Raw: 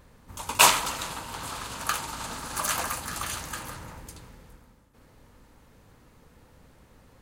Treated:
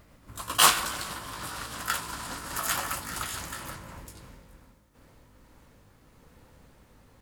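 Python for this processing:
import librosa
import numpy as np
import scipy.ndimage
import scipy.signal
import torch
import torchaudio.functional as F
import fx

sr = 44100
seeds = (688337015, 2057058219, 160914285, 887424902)

y = fx.pitch_glide(x, sr, semitones=2.5, runs='ending unshifted')
y = fx.quant_dither(y, sr, seeds[0], bits=12, dither='none')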